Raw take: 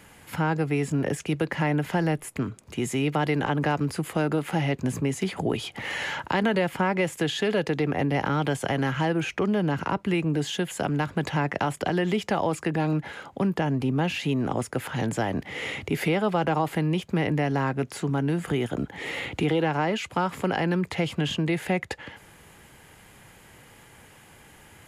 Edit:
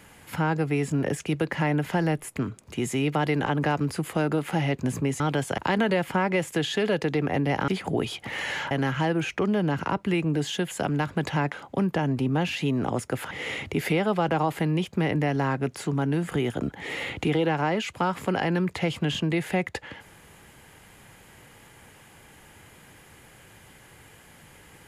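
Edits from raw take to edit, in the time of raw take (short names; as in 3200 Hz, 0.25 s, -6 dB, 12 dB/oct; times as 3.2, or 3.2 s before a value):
5.2–6.23 swap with 8.33–8.71
11.52–13.15 cut
14.94–15.47 cut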